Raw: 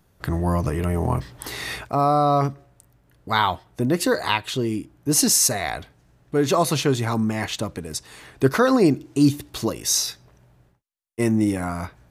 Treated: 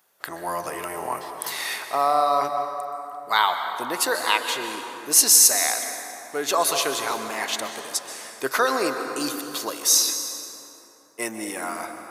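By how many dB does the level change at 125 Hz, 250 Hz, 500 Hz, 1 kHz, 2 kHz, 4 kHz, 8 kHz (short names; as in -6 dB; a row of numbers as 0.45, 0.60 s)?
under -25 dB, -13.0 dB, -4.0 dB, +1.0 dB, +2.0 dB, +3.0 dB, +4.5 dB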